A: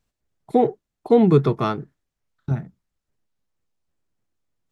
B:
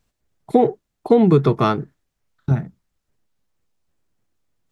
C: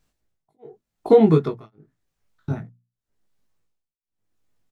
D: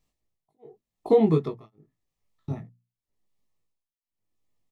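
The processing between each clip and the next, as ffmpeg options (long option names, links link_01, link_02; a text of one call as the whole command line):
ffmpeg -i in.wav -af "acompressor=threshold=-15dB:ratio=6,volume=5.5dB" out.wav
ffmpeg -i in.wav -filter_complex "[0:a]tremolo=f=0.88:d=1,bandreject=frequency=60:width_type=h:width=6,bandreject=frequency=120:width_type=h:width=6,bandreject=frequency=180:width_type=h:width=6,bandreject=frequency=240:width_type=h:width=6,asplit=2[link_01][link_02];[link_02]adelay=19,volume=-3dB[link_03];[link_01][link_03]amix=inputs=2:normalize=0,volume=-1.5dB" out.wav
ffmpeg -i in.wav -af "asuperstop=centerf=1500:order=4:qfactor=4.1,volume=-5.5dB" out.wav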